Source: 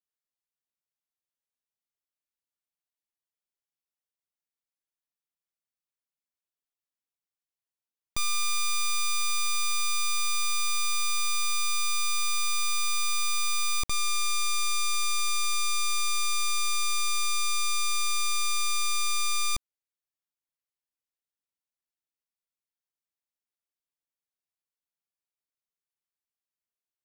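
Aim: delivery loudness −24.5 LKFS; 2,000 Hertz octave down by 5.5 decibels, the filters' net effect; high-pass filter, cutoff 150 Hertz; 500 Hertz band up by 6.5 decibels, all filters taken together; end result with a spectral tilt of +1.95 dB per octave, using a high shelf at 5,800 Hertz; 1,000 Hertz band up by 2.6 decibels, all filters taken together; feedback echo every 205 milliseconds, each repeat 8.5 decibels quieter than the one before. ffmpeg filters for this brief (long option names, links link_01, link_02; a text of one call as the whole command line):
ffmpeg -i in.wav -af "highpass=150,equalizer=frequency=500:width_type=o:gain=7,equalizer=frequency=1000:width_type=o:gain=5.5,equalizer=frequency=2000:width_type=o:gain=-7.5,highshelf=frequency=5800:gain=-4,aecho=1:1:205|410|615|820:0.376|0.143|0.0543|0.0206,volume=1dB" out.wav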